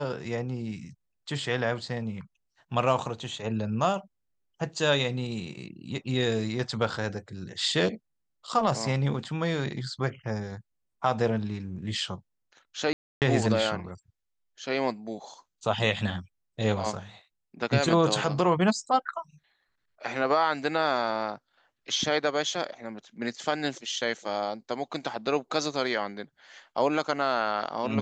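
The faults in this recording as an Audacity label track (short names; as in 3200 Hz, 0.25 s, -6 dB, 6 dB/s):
12.930000	13.220000	gap 0.288 s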